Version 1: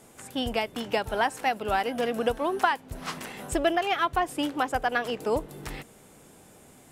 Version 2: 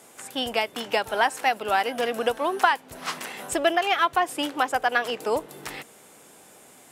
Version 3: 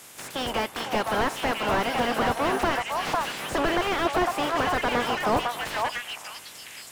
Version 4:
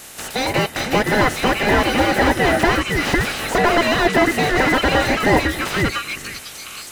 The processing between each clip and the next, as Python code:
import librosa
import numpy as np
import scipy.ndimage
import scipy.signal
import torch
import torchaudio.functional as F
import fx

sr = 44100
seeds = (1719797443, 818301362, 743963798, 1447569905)

y1 = fx.highpass(x, sr, hz=550.0, slope=6)
y1 = y1 * librosa.db_to_amplitude(5.0)
y2 = fx.spec_clip(y1, sr, under_db=16)
y2 = fx.echo_stepped(y2, sr, ms=501, hz=870.0, octaves=1.4, feedback_pct=70, wet_db=-4)
y2 = fx.slew_limit(y2, sr, full_power_hz=51.0)
y2 = y2 * librosa.db_to_amplitude(4.5)
y3 = fx.band_invert(y2, sr, width_hz=1000)
y3 = y3 * librosa.db_to_amplitude(8.5)